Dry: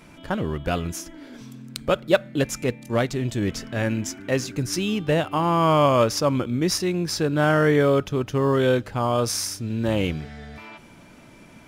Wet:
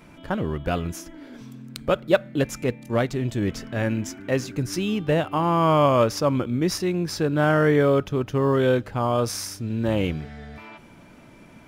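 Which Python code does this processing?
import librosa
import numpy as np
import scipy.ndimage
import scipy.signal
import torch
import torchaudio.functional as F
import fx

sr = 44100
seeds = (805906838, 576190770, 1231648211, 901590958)

y = fx.peak_eq(x, sr, hz=7200.0, db=-5.0, octaves=2.5)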